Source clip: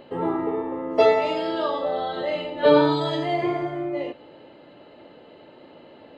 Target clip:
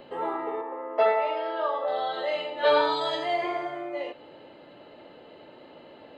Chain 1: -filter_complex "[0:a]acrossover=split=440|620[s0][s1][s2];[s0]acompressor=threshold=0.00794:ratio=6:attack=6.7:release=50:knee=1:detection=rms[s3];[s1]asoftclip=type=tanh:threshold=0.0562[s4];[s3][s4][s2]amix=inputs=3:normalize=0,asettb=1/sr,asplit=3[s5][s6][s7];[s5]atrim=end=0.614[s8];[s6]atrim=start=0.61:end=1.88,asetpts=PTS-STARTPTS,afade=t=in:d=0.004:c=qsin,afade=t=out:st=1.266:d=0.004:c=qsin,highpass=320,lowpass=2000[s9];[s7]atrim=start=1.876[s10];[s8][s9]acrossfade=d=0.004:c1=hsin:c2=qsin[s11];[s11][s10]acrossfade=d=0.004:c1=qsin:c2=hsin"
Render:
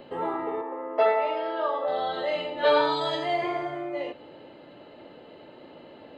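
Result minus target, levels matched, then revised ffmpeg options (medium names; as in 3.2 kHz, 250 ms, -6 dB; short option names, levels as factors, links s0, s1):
compression: peak gain reduction -9.5 dB
-filter_complex "[0:a]acrossover=split=440|620[s0][s1][s2];[s0]acompressor=threshold=0.00211:ratio=6:attack=6.7:release=50:knee=1:detection=rms[s3];[s1]asoftclip=type=tanh:threshold=0.0562[s4];[s3][s4][s2]amix=inputs=3:normalize=0,asettb=1/sr,asplit=3[s5][s6][s7];[s5]atrim=end=0.614[s8];[s6]atrim=start=0.61:end=1.88,asetpts=PTS-STARTPTS,afade=t=in:d=0.004:c=qsin,afade=t=out:st=1.266:d=0.004:c=qsin,highpass=320,lowpass=2000[s9];[s7]atrim=start=1.876[s10];[s8][s9]acrossfade=d=0.004:c1=hsin:c2=qsin[s11];[s11][s10]acrossfade=d=0.004:c1=qsin:c2=hsin"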